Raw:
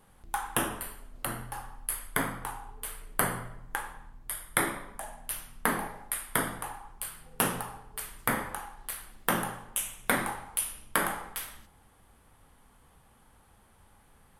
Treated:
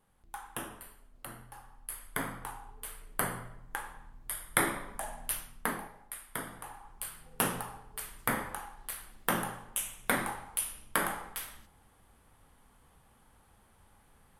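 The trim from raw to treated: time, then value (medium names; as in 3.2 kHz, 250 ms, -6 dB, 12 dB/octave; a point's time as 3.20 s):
1.60 s -11 dB
2.31 s -4.5 dB
3.66 s -4.5 dB
5.25 s +2.5 dB
5.91 s -10 dB
6.46 s -10 dB
7.01 s -2.5 dB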